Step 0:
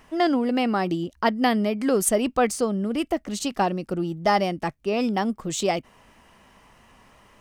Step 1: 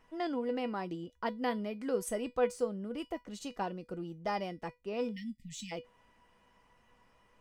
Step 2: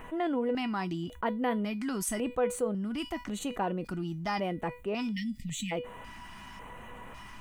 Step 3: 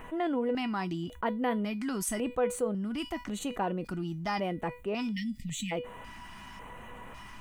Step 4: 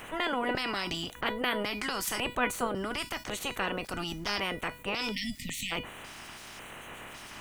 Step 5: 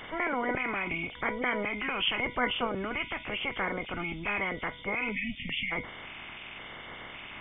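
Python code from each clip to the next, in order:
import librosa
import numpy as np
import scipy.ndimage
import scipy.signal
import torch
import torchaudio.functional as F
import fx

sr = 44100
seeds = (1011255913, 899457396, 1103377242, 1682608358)

y1 = fx.high_shelf(x, sr, hz=4500.0, db=-7.0)
y1 = fx.spec_erase(y1, sr, start_s=5.11, length_s=0.61, low_hz=260.0, high_hz=1800.0)
y1 = fx.comb_fb(y1, sr, f0_hz=490.0, decay_s=0.19, harmonics='all', damping=0.0, mix_pct=80)
y1 = F.gain(torch.from_numpy(y1), -1.5).numpy()
y2 = fx.filter_lfo_notch(y1, sr, shape='square', hz=0.91, low_hz=500.0, high_hz=5100.0, q=0.8)
y2 = fx.env_flatten(y2, sr, amount_pct=50)
y3 = y2
y4 = fx.spec_clip(y3, sr, under_db=26)
y5 = fx.freq_compress(y4, sr, knee_hz=2000.0, ratio=4.0)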